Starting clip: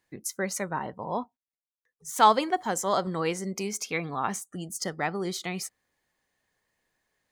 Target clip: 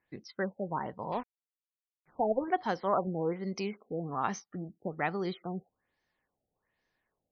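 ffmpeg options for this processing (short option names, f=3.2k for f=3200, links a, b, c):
-filter_complex "[0:a]asettb=1/sr,asplit=3[a][b][c];[a]atrim=end=1.124[d];[b]atrim=start=1.12:end=2.48,asetpts=PTS-STARTPTS,afade=t=in:d=0.004:c=qsin,afade=t=out:st=1.356:d=0.004:c=qsin,aeval=exprs='sgn(val(0))*max(abs(val(0))-0.01,0)':c=same[e];[c]atrim=start=2.476[f];[d][e]acrossfade=d=0.004:c1=hsin:c2=qsin[g];[g][f]acrossfade=d=0.004:c1=qsin:c2=hsin,afftfilt=real='re*lt(b*sr/1024,800*pow(6500/800,0.5+0.5*sin(2*PI*1.2*pts/sr)))':imag='im*lt(b*sr/1024,800*pow(6500/800,0.5+0.5*sin(2*PI*1.2*pts/sr)))':win_size=1024:overlap=0.75,volume=-2.5dB"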